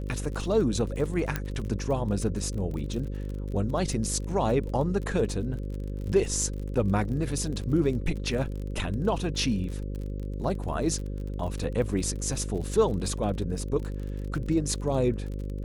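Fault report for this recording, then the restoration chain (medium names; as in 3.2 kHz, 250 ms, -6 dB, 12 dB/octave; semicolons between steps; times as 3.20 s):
buzz 50 Hz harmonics 11 -33 dBFS
crackle 39 per s -35 dBFS
1.36 s: pop -13 dBFS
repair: de-click; de-hum 50 Hz, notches 11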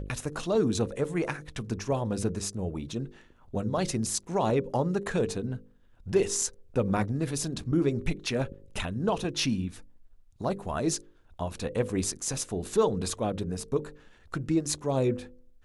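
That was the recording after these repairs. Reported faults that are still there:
nothing left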